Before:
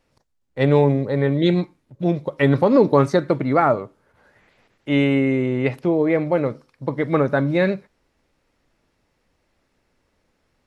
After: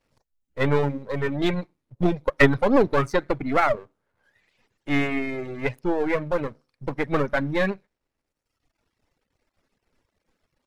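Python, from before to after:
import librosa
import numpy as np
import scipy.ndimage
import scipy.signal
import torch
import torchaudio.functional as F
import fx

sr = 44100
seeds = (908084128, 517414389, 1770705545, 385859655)

y = np.where(x < 0.0, 10.0 ** (-12.0 / 20.0) * x, x)
y = fx.dereverb_blind(y, sr, rt60_s=1.2)
y = fx.transient(y, sr, attack_db=7, sustain_db=1, at=(1.62, 2.55))
y = fx.dynamic_eq(y, sr, hz=1900.0, q=1.3, threshold_db=-39.0, ratio=4.0, max_db=5)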